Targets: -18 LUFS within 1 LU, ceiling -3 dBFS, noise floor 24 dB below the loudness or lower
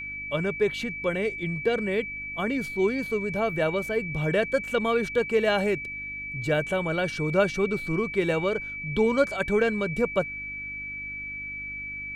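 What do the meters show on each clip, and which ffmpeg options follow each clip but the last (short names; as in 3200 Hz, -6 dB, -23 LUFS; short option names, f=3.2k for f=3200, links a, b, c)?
hum 50 Hz; harmonics up to 300 Hz; hum level -48 dBFS; steady tone 2300 Hz; tone level -33 dBFS; loudness -27.0 LUFS; peak -8.5 dBFS; loudness target -18.0 LUFS
-> -af "bandreject=f=50:t=h:w=4,bandreject=f=100:t=h:w=4,bandreject=f=150:t=h:w=4,bandreject=f=200:t=h:w=4,bandreject=f=250:t=h:w=4,bandreject=f=300:t=h:w=4"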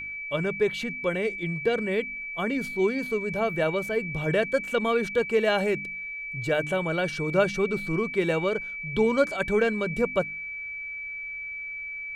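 hum none; steady tone 2300 Hz; tone level -33 dBFS
-> -af "bandreject=f=2.3k:w=30"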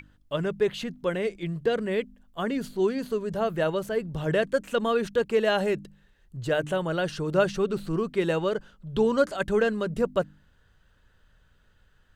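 steady tone none; loudness -27.5 LUFS; peak -9.5 dBFS; loudness target -18.0 LUFS
-> -af "volume=9.5dB,alimiter=limit=-3dB:level=0:latency=1"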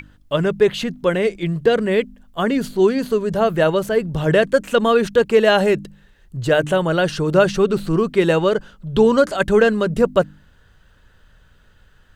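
loudness -18.0 LUFS; peak -3.0 dBFS; noise floor -53 dBFS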